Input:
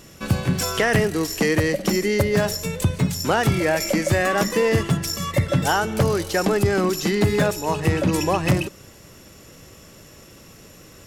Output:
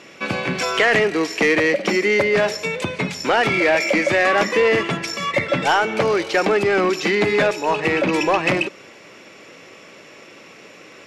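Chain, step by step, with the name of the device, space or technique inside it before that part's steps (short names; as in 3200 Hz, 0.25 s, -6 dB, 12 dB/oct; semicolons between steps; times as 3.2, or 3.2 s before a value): intercom (BPF 320–4000 Hz; bell 2300 Hz +9 dB 0.33 oct; soft clip -15 dBFS, distortion -16 dB); gain +6 dB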